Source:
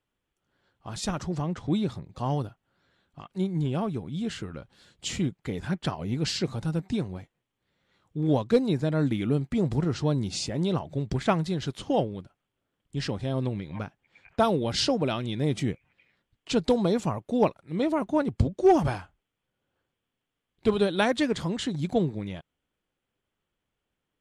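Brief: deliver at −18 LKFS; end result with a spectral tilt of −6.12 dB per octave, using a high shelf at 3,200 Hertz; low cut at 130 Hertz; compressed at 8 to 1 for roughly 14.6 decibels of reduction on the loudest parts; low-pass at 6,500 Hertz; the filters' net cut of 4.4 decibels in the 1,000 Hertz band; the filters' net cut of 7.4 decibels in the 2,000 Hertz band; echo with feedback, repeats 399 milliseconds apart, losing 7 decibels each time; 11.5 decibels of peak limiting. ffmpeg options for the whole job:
ffmpeg -i in.wav -af "highpass=130,lowpass=6500,equalizer=frequency=1000:width_type=o:gain=-4.5,equalizer=frequency=2000:width_type=o:gain=-6.5,highshelf=frequency=3200:gain=-5.5,acompressor=threshold=-31dB:ratio=8,alimiter=level_in=8dB:limit=-24dB:level=0:latency=1,volume=-8dB,aecho=1:1:399|798|1197|1596|1995:0.447|0.201|0.0905|0.0407|0.0183,volume=23dB" out.wav

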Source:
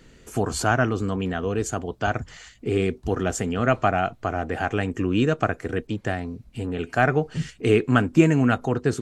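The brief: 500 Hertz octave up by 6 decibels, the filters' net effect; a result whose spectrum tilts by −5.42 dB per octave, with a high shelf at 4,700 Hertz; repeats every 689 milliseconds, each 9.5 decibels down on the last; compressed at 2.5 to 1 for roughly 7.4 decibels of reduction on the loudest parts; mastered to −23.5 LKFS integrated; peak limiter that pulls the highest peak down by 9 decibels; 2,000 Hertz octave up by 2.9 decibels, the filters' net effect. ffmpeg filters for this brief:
ffmpeg -i in.wav -af "equalizer=frequency=500:width_type=o:gain=7.5,equalizer=frequency=2000:width_type=o:gain=3,highshelf=frequency=4700:gain=3.5,acompressor=threshold=-19dB:ratio=2.5,alimiter=limit=-14.5dB:level=0:latency=1,aecho=1:1:689|1378|2067|2756:0.335|0.111|0.0365|0.012,volume=3dB" out.wav

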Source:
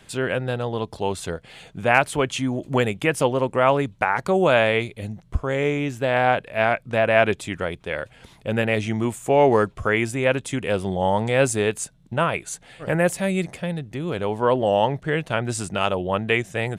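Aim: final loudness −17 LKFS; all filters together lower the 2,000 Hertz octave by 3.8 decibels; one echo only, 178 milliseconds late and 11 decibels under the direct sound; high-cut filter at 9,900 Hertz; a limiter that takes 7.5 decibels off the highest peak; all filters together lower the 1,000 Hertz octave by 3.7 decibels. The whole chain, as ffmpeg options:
ffmpeg -i in.wav -af "lowpass=9900,equalizer=frequency=1000:width_type=o:gain=-4.5,equalizer=frequency=2000:width_type=o:gain=-3.5,alimiter=limit=-13.5dB:level=0:latency=1,aecho=1:1:178:0.282,volume=8.5dB" out.wav

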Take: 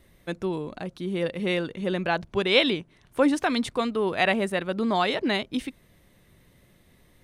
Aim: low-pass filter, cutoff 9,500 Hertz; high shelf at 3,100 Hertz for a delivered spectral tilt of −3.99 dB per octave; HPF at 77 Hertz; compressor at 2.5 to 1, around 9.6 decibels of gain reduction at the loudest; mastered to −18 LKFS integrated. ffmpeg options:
ffmpeg -i in.wav -af "highpass=77,lowpass=9500,highshelf=frequency=3100:gain=-5.5,acompressor=threshold=-31dB:ratio=2.5,volume=15dB" out.wav

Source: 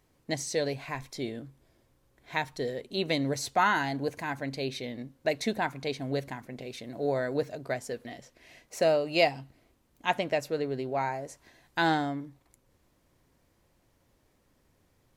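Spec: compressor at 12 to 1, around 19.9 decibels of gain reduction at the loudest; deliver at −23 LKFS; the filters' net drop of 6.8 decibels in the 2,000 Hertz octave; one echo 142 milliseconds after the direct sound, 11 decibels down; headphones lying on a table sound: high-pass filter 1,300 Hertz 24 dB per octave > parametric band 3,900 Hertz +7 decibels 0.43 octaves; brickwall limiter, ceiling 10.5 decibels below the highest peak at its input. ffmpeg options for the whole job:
ffmpeg -i in.wav -af "equalizer=frequency=2000:width_type=o:gain=-9,acompressor=threshold=-41dB:ratio=12,alimiter=level_in=14.5dB:limit=-24dB:level=0:latency=1,volume=-14.5dB,highpass=frequency=1300:width=0.5412,highpass=frequency=1300:width=1.3066,equalizer=frequency=3900:width_type=o:width=0.43:gain=7,aecho=1:1:142:0.282,volume=29.5dB" out.wav

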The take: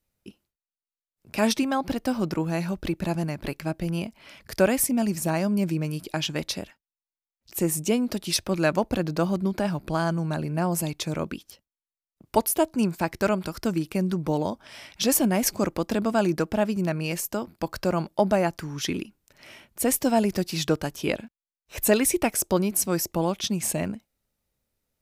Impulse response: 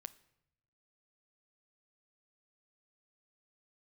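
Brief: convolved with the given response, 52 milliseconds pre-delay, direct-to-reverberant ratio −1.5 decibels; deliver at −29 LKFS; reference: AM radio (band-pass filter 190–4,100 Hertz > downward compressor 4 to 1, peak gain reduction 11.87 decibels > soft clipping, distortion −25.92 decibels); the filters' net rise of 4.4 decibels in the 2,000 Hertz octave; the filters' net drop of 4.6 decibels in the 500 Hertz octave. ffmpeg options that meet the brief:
-filter_complex "[0:a]equalizer=frequency=500:width_type=o:gain=-6.5,equalizer=frequency=2000:width_type=o:gain=6.5,asplit=2[link_01][link_02];[1:a]atrim=start_sample=2205,adelay=52[link_03];[link_02][link_03]afir=irnorm=-1:irlink=0,volume=7dB[link_04];[link_01][link_04]amix=inputs=2:normalize=0,highpass=190,lowpass=4100,acompressor=threshold=-27dB:ratio=4,asoftclip=threshold=-17dB,volume=2.5dB"

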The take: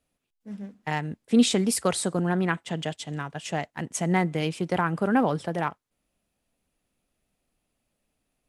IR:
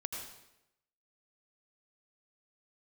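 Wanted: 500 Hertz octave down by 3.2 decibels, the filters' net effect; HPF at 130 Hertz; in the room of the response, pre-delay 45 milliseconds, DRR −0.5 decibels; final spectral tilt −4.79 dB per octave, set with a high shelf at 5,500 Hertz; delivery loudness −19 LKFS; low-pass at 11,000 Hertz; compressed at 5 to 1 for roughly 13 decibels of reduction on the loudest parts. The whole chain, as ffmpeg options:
-filter_complex "[0:a]highpass=130,lowpass=11000,equalizer=frequency=500:width_type=o:gain=-4,highshelf=frequency=5500:gain=-4.5,acompressor=threshold=-30dB:ratio=5,asplit=2[link_01][link_02];[1:a]atrim=start_sample=2205,adelay=45[link_03];[link_02][link_03]afir=irnorm=-1:irlink=0,volume=0dB[link_04];[link_01][link_04]amix=inputs=2:normalize=0,volume=13.5dB"

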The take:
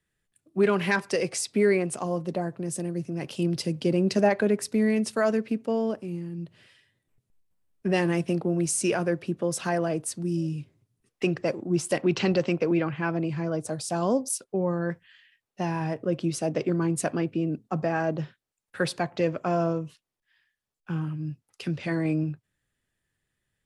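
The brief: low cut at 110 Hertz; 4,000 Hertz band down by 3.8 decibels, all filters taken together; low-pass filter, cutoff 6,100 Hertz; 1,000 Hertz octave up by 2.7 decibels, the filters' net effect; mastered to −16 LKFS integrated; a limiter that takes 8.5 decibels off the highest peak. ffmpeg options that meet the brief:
ffmpeg -i in.wav -af "highpass=110,lowpass=6100,equalizer=frequency=1000:width_type=o:gain=4,equalizer=frequency=4000:width_type=o:gain=-4.5,volume=12.5dB,alimiter=limit=-4dB:level=0:latency=1" out.wav

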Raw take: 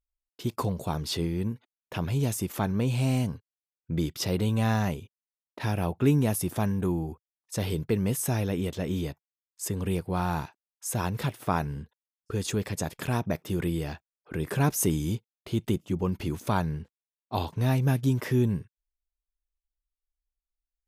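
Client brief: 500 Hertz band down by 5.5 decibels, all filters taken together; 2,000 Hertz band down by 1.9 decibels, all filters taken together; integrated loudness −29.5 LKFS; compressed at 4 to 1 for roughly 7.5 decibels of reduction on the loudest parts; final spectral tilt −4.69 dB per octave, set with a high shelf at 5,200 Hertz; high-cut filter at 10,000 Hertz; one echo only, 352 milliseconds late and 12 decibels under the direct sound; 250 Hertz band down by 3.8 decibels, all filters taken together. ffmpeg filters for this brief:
ffmpeg -i in.wav -af "lowpass=10000,equalizer=frequency=250:width_type=o:gain=-4,equalizer=frequency=500:width_type=o:gain=-6,equalizer=frequency=2000:width_type=o:gain=-3.5,highshelf=frequency=5200:gain=8.5,acompressor=threshold=-30dB:ratio=4,aecho=1:1:352:0.251,volume=5.5dB" out.wav

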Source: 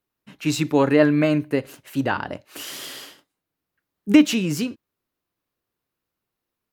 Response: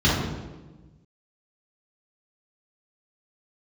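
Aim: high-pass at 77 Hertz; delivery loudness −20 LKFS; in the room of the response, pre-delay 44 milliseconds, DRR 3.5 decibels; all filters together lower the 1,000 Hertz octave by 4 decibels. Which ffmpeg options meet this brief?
-filter_complex "[0:a]highpass=77,equalizer=frequency=1000:width_type=o:gain=-5,asplit=2[link_01][link_02];[1:a]atrim=start_sample=2205,adelay=44[link_03];[link_02][link_03]afir=irnorm=-1:irlink=0,volume=-22dB[link_04];[link_01][link_04]amix=inputs=2:normalize=0,volume=-4dB"

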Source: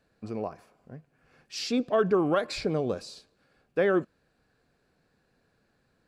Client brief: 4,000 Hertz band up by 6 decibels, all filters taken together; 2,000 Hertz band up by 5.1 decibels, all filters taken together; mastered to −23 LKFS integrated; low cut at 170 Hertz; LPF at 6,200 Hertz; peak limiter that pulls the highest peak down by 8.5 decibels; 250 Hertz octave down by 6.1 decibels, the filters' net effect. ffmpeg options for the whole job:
ffmpeg -i in.wav -af "highpass=170,lowpass=6200,equalizer=frequency=250:width_type=o:gain=-8,equalizer=frequency=2000:width_type=o:gain=5.5,equalizer=frequency=4000:width_type=o:gain=7,volume=9.5dB,alimiter=limit=-10.5dB:level=0:latency=1" out.wav

